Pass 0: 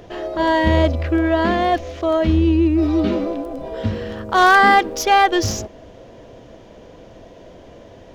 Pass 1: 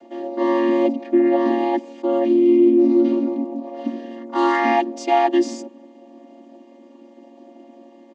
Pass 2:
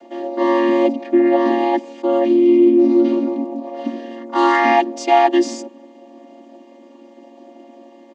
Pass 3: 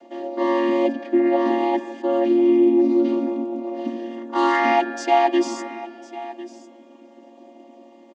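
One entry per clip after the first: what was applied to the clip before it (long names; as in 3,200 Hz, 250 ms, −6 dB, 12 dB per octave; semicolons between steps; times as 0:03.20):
channel vocoder with a chord as carrier minor triad, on A#3; high-shelf EQ 6,300 Hz +8 dB; comb filter 3.3 ms, depth 85%; level −3.5 dB
low-shelf EQ 240 Hz −8.5 dB; level +5 dB
single-tap delay 1,051 ms −17 dB; spring reverb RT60 3.6 s, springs 41 ms, chirp 80 ms, DRR 11 dB; level −4 dB; SBC 128 kbit/s 44,100 Hz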